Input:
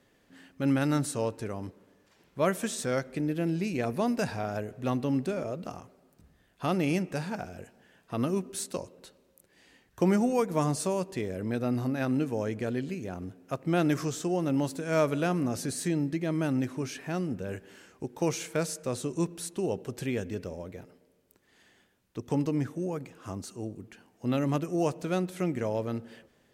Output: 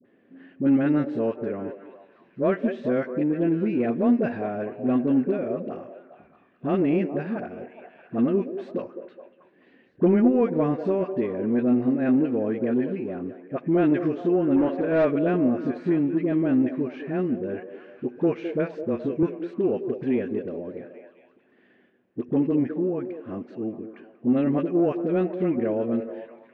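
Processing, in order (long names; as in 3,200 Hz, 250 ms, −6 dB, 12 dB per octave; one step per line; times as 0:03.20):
loudspeaker in its box 180–2,300 Hz, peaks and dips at 240 Hz +7 dB, 360 Hz +5 dB, 900 Hz −9 dB, 1,300 Hz −6 dB, 2,100 Hz −4 dB
all-pass dispersion highs, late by 51 ms, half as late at 700 Hz
in parallel at −5.5 dB: soft clipping −21 dBFS, distortion −16 dB
0:18.83–0:19.23: on the sum: frequency shifter −13 Hz
on a send: echo through a band-pass that steps 209 ms, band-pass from 450 Hz, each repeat 0.7 octaves, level −7.5 dB
0:14.56–0:15.05: on the sum: mid-hump overdrive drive 16 dB, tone 1,400 Hz, clips at −13 dBFS
level +1 dB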